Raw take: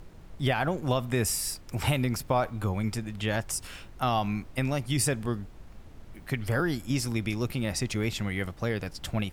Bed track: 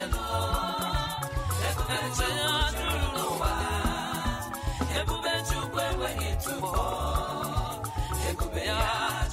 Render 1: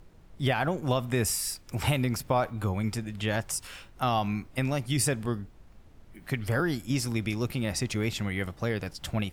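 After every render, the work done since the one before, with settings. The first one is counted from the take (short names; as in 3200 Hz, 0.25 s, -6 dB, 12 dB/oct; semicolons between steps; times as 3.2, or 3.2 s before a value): noise print and reduce 6 dB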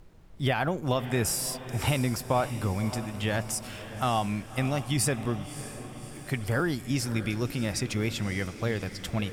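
diffused feedback echo 0.597 s, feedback 56%, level -12.5 dB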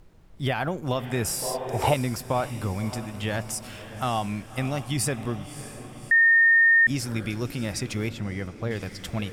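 1.42–1.94 band shelf 620 Hz +12 dB; 6.11–6.87 bleep 1830 Hz -14 dBFS; 8.09–8.71 high shelf 2200 Hz -10 dB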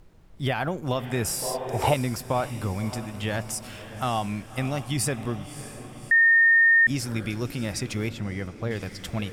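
nothing audible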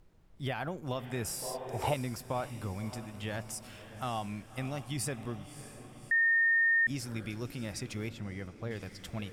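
gain -9 dB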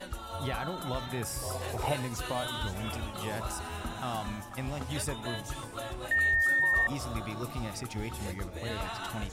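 add bed track -10 dB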